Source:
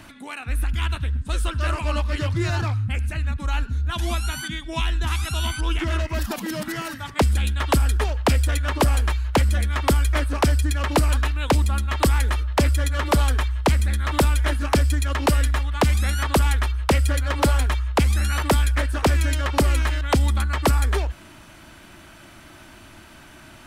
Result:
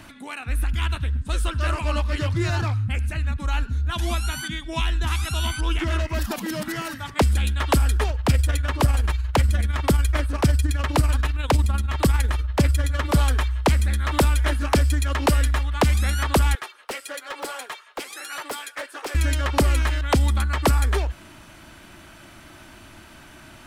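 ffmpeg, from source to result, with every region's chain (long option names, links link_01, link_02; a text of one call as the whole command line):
ffmpeg -i in.wav -filter_complex "[0:a]asettb=1/sr,asplit=3[link_01][link_02][link_03];[link_01]atrim=end=8.104[link_04];[link_02]atrim=start=8.1:end=13.16,asetpts=PTS-STARTPTS,afade=type=in:duration=0.004:curve=qsin,afade=type=out:start_time=5.056:duration=0.004:curve=qsin,equalizer=frequency=120:width_type=o:width=1.2:gain=6.5,tremolo=f=20:d=0.52[link_05];[link_03]atrim=start=13.156[link_06];[link_04][link_05]acrossfade=duration=0.004:curve1=hsin:curve2=qsin[link_07];[link_07][link_06]acrossfade=duration=0.004:curve1=qsin:curve2=hsin,asettb=1/sr,asplit=3[link_08][link_09][link_10];[link_08]atrim=end=16.554[link_11];[link_09]atrim=start=16.55:end=19.15,asetpts=PTS-STARTPTS,afade=type=in:duration=0.004:curve=qsin,afade=type=out:start_time=2.596:duration=0.004:curve=qsin,highpass=frequency=390:width=0.5412,highpass=frequency=390:width=1.3066,flanger=delay=2.3:depth=2.2:regen=-52:speed=1.2:shape=sinusoidal,asoftclip=type=hard:threshold=-26dB[link_12];[link_10]atrim=start=19.146[link_13];[link_11][link_12]acrossfade=duration=0.004:curve1=hsin:curve2=qsin[link_14];[link_14][link_13]acrossfade=duration=0.004:curve1=qsin:curve2=hsin" out.wav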